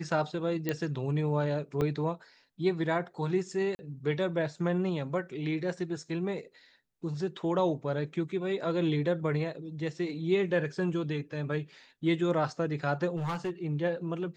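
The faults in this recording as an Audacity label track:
0.690000	0.690000	click −16 dBFS
1.810000	1.810000	drop-out 4.6 ms
3.750000	3.790000	drop-out 40 ms
13.160000	13.510000	clipping −28.5 dBFS

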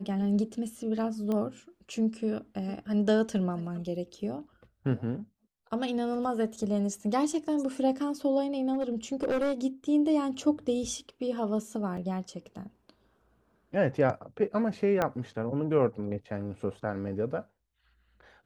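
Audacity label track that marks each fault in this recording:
1.320000	1.320000	click −21 dBFS
8.730000	9.530000	clipping −24 dBFS
11.970000	11.970000	drop-out 4.2 ms
15.020000	15.020000	click −14 dBFS

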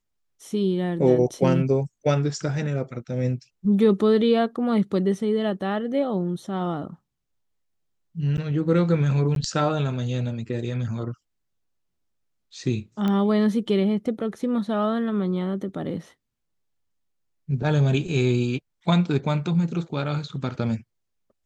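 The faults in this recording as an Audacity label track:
8.370000	8.380000	drop-out 9.6 ms
9.350000	9.360000	drop-out 12 ms
13.080000	13.080000	click −15 dBFS

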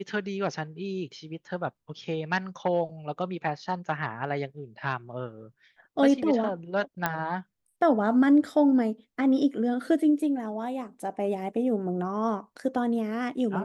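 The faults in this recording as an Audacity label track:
7.060000	7.060000	click −11 dBFS

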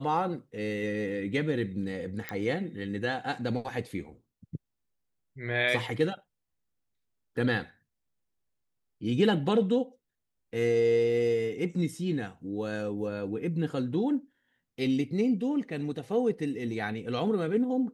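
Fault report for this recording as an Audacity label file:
2.290000	2.290000	click −18 dBFS

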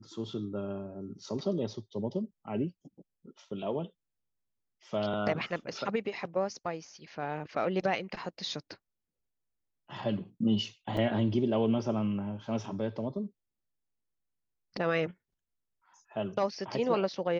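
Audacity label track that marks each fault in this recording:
10.970000	10.970000	drop-out 3.2 ms

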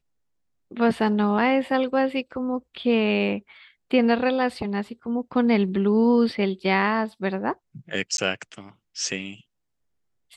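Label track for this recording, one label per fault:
8.170000	8.180000	drop-out 12 ms

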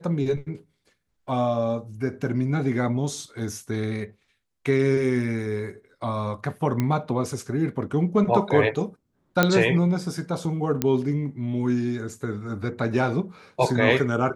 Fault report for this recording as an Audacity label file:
6.800000	6.800000	click −12 dBFS
9.430000	9.430000	click −4 dBFS
10.820000	10.820000	click −8 dBFS

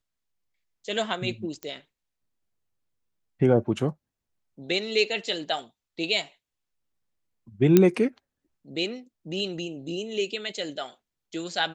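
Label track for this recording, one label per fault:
1.630000	1.630000	click −19 dBFS
7.770000	7.770000	click −4 dBFS

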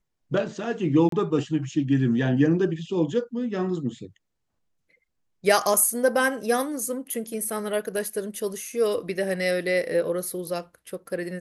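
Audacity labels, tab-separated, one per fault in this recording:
1.090000	1.120000	drop-out 33 ms

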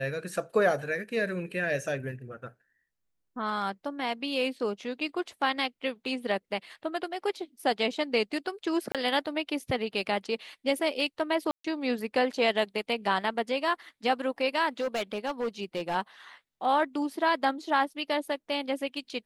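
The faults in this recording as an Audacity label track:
8.920000	8.950000	drop-out 27 ms
11.510000	11.640000	drop-out 134 ms
14.800000	15.960000	clipping −26 dBFS

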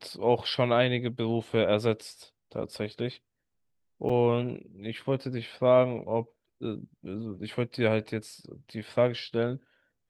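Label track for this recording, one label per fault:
4.090000	4.090000	drop-out 4.7 ms

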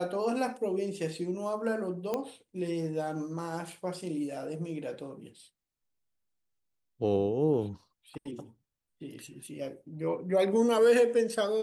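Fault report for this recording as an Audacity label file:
2.140000	2.140000	click −18 dBFS

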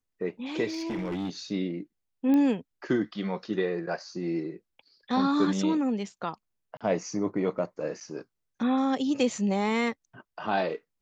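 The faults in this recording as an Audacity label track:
0.670000	1.300000	clipping −28 dBFS
2.340000	2.340000	click −17 dBFS
6.770000	6.810000	drop-out 36 ms

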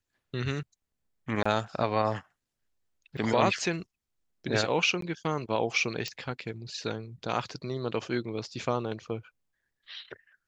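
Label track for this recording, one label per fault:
1.430000	1.460000	drop-out 25 ms
3.170000	3.180000	drop-out 5.8 ms
5.010000	5.020000	drop-out 13 ms
6.080000	6.080000	click −20 dBFS

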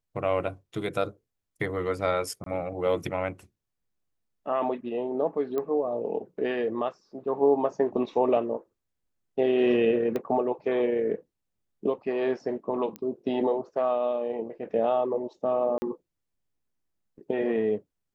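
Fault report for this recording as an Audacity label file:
2.440000	2.460000	drop-out 23 ms
5.580000	5.580000	click −19 dBFS
10.160000	10.160000	click −18 dBFS
12.960000	12.960000	click −22 dBFS
15.780000	15.820000	drop-out 40 ms

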